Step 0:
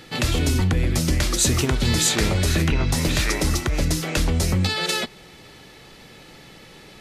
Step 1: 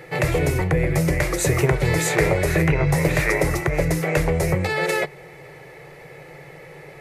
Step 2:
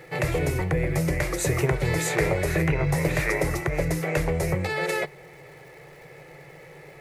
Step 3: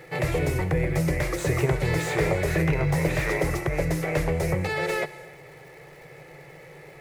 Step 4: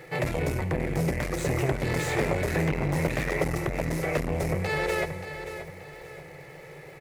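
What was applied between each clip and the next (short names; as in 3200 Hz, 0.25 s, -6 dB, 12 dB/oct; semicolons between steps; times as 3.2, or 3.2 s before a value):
EQ curve 100 Hz 0 dB, 150 Hz +14 dB, 220 Hz -12 dB, 340 Hz +7 dB, 490 Hz +14 dB, 1400 Hz +4 dB, 2100 Hz +12 dB, 3200 Hz -7 dB, 5300 Hz -5 dB, 12000 Hz +3 dB; gain -4 dB
crackle 430/s -44 dBFS; gain -4.5 dB
on a send at -16.5 dB: reverb, pre-delay 53 ms; on the sum: slew limiter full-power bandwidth 110 Hz
feedback echo 0.579 s, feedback 36%, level -11.5 dB; core saturation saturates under 500 Hz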